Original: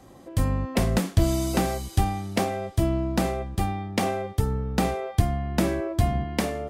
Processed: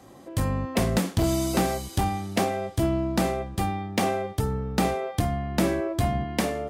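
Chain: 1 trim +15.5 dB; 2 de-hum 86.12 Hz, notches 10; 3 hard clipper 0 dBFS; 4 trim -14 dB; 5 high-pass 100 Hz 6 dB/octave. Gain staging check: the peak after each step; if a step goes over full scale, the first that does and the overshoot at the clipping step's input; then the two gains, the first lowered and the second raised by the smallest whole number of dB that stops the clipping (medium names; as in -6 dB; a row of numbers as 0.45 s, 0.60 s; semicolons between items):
+7.5 dBFS, +6.5 dBFS, 0.0 dBFS, -14.0 dBFS, -11.0 dBFS; step 1, 6.5 dB; step 1 +8.5 dB, step 4 -7 dB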